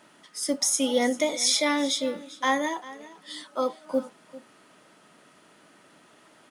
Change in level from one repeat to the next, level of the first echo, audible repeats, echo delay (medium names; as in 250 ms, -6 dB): no regular repeats, -18.0 dB, 1, 395 ms